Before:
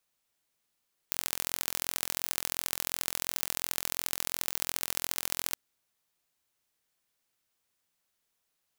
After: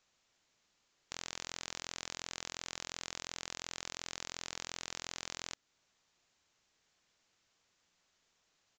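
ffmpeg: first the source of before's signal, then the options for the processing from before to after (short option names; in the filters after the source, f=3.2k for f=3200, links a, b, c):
-f lavfi -i "aevalsrc='0.841*eq(mod(n,1030),0)*(0.5+0.5*eq(mod(n,3090),0))':d=4.43:s=44100"
-filter_complex "[0:a]asplit=2[a][b];[b]alimiter=limit=-11.5dB:level=0:latency=1:release=293,volume=2dB[c];[a][c]amix=inputs=2:normalize=0,asoftclip=type=hard:threshold=-10.5dB,aresample=16000,aresample=44100"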